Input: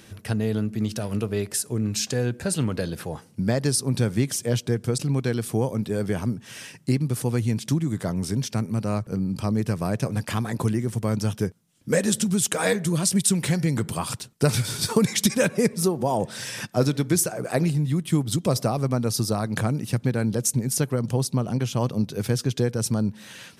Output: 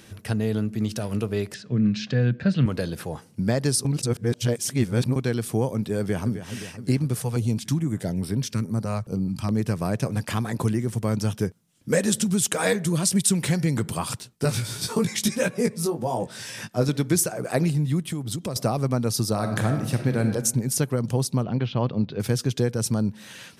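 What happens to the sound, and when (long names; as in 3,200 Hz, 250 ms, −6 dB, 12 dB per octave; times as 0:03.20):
0:01.54–0:02.66: loudspeaker in its box 110–4,100 Hz, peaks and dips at 130 Hz +9 dB, 200 Hz +9 dB, 380 Hz −5 dB, 870 Hz −10 dB, 1,700 Hz +3 dB
0:03.85–0:05.16: reverse
0:05.99–0:06.47: delay throw 260 ms, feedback 70%, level −11 dB
0:07.15–0:09.51: notch on a step sequencer 4.7 Hz 300–6,600 Hz
0:14.20–0:16.89: chorus effect 1.5 Hz, delay 16 ms, depth 3.1 ms
0:18.00–0:18.56: downward compressor 4 to 1, threshold −26 dBFS
0:19.32–0:20.27: thrown reverb, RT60 0.94 s, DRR 4.5 dB
0:21.43–0:22.20: Butterworth low-pass 4,200 Hz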